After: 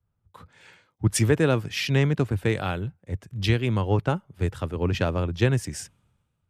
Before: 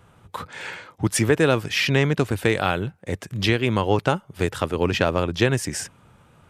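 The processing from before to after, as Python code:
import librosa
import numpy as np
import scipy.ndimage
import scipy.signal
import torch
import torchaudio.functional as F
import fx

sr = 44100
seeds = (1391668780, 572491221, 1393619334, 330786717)

y = fx.low_shelf(x, sr, hz=180.0, db=11.5)
y = fx.band_widen(y, sr, depth_pct=70)
y = F.gain(torch.from_numpy(y), -7.0).numpy()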